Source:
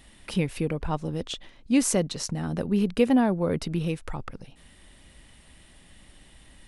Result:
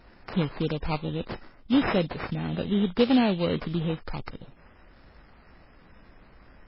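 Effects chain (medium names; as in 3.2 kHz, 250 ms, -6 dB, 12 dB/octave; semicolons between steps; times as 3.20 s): sample-rate reducer 3.4 kHz, jitter 20%; MP3 16 kbps 12 kHz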